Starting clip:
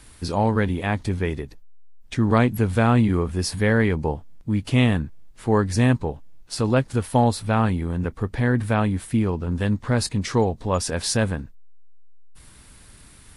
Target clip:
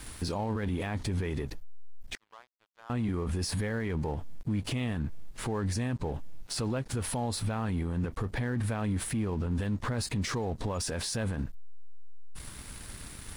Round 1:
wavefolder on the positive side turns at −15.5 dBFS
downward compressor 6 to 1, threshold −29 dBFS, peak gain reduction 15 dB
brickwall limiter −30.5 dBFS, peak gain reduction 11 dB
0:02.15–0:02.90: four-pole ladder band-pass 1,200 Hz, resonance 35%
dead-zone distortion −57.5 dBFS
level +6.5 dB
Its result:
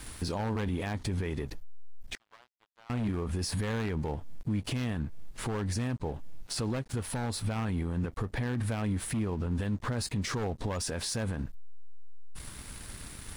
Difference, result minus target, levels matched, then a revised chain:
wavefolder on the positive side: distortion +25 dB; downward compressor: peak gain reduction +5.5 dB
wavefolder on the positive side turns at −7.5 dBFS
downward compressor 6 to 1, threshold −22.5 dBFS, peak gain reduction 9.5 dB
brickwall limiter −30.5 dBFS, peak gain reduction 16 dB
0:02.15–0:02.90: four-pole ladder band-pass 1,200 Hz, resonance 35%
dead-zone distortion −57.5 dBFS
level +6.5 dB

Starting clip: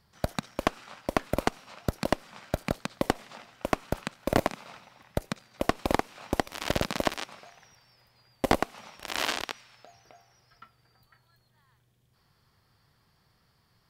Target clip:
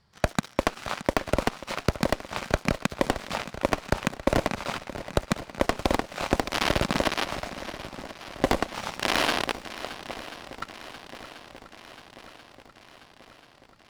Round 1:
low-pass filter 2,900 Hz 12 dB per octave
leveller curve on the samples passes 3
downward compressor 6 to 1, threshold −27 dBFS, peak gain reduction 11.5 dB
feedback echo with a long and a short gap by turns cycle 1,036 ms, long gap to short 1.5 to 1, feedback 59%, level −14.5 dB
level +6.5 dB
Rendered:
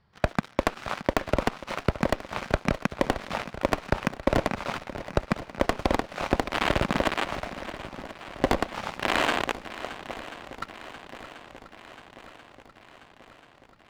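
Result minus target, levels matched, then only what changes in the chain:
8,000 Hz band −5.0 dB
change: low-pass filter 7,600 Hz 12 dB per octave

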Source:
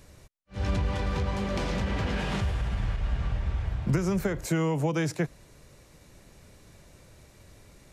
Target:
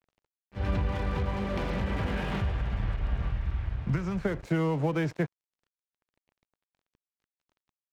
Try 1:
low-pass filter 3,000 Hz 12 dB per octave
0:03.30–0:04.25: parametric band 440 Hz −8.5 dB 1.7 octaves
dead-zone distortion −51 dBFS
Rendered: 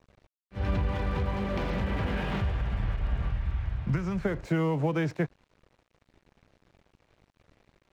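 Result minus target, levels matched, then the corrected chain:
dead-zone distortion: distortion −5 dB
low-pass filter 3,000 Hz 12 dB per octave
0:03.30–0:04.25: parametric band 440 Hz −8.5 dB 1.7 octaves
dead-zone distortion −45 dBFS

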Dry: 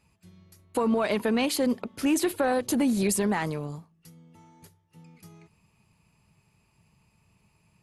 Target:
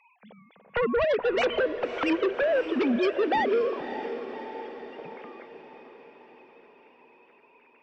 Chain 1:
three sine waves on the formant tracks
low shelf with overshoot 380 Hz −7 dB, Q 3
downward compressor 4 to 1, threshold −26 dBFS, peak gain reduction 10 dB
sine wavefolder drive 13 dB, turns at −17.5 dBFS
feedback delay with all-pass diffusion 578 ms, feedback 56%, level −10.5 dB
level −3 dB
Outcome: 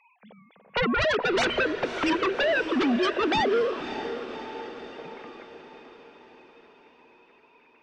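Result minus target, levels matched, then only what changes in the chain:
downward compressor: peak gain reduction −5 dB
change: downward compressor 4 to 1, threshold −33 dBFS, peak gain reduction 15 dB

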